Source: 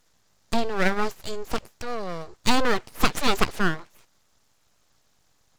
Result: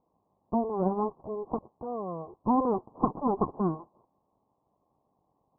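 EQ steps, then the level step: high-pass 180 Hz 6 dB/octave; dynamic bell 640 Hz, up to -4 dB, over -37 dBFS, Q 1.5; rippled Chebyshev low-pass 1.1 kHz, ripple 3 dB; +2.5 dB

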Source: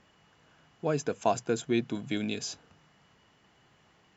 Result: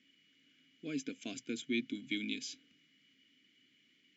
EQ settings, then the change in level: vowel filter i; treble shelf 2.5 kHz +12 dB; treble shelf 6.4 kHz +9.5 dB; +2.0 dB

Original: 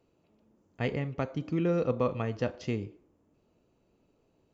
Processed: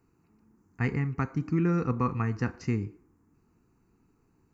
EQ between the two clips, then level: static phaser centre 1.4 kHz, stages 4; +6.0 dB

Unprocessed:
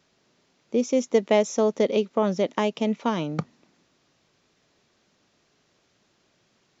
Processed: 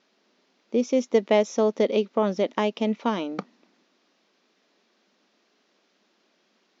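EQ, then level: brick-wall FIR high-pass 180 Hz; low-pass 5.8 kHz 24 dB/octave; 0.0 dB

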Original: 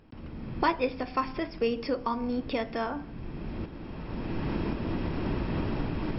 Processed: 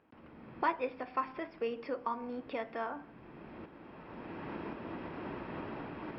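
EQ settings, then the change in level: high-pass 620 Hz 6 dB/octave; low-pass 2.1 kHz 12 dB/octave; -3.0 dB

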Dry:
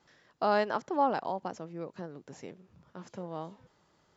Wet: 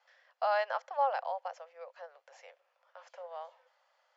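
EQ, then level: rippled Chebyshev high-pass 510 Hz, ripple 3 dB; low-pass 4.9 kHz 12 dB/octave; band-stop 3.8 kHz, Q 15; 0.0 dB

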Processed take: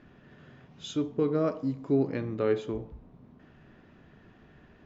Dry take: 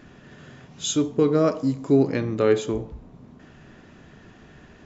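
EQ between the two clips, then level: distance through air 170 m; -7.0 dB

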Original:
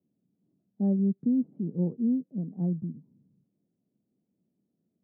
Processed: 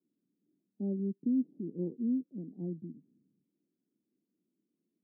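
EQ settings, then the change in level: band-pass filter 320 Hz, Q 2.7; 0.0 dB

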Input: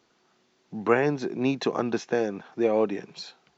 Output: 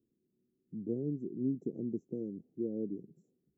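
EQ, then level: inverse Chebyshev band-stop 970–4700 Hz, stop band 60 dB; -6.5 dB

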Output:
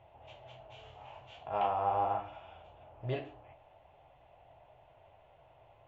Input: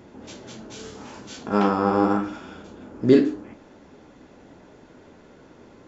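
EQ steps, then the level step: FFT filter 130 Hz 0 dB, 220 Hz -27 dB, 470 Hz -11 dB, 680 Hz +9 dB, 1.5 kHz -11 dB, 2.9 kHz +3 dB, 4.9 kHz -24 dB; -8.5 dB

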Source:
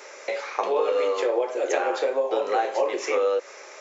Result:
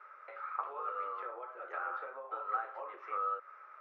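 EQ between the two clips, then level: band-pass filter 1.3 kHz, Q 13; distance through air 290 m; +5.0 dB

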